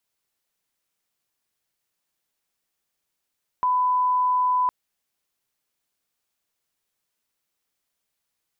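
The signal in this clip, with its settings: line-up tone -18 dBFS 1.06 s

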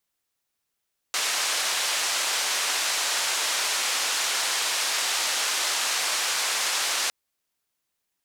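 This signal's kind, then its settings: noise band 670–7200 Hz, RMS -26 dBFS 5.96 s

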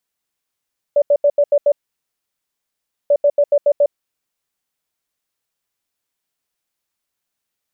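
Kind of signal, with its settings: beep pattern sine 578 Hz, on 0.06 s, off 0.08 s, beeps 6, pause 1.38 s, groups 2, -9 dBFS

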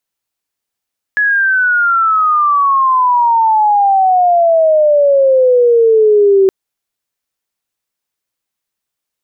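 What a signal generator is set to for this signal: sweep logarithmic 1.7 kHz -> 380 Hz -9 dBFS -> -5 dBFS 5.32 s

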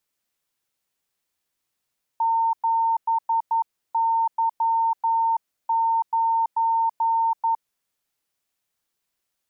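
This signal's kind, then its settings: Morse "7Y9" 11 wpm 910 Hz -18 dBFS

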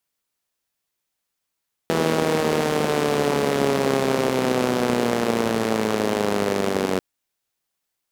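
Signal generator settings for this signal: four-cylinder engine model, changing speed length 5.09 s, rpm 4900, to 2800, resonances 240/410 Hz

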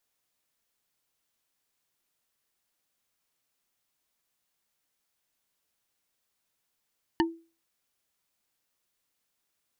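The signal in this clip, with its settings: wood hit bar, lowest mode 331 Hz, decay 0.34 s, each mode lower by 2 dB, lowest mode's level -19 dB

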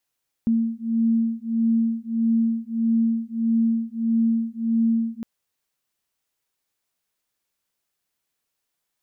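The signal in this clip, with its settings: beating tones 227 Hz, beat 1.6 Hz, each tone -22 dBFS 4.76 s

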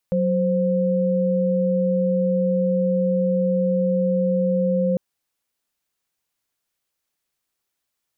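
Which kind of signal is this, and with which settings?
chord F#3/C5 sine, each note -20 dBFS 4.85 s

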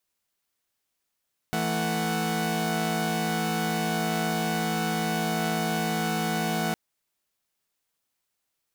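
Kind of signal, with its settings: chord E3/A3/F#5 saw, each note -27 dBFS 5.21 s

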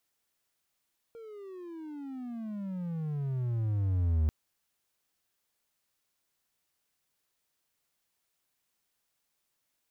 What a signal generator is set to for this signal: gliding synth tone triangle, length 3.14 s, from 466 Hz, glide -31.5 st, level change +21 dB, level -21 dB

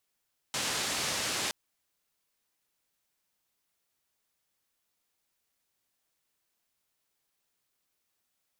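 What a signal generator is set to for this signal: noise band 85–7000 Hz, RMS -32.5 dBFS 0.97 s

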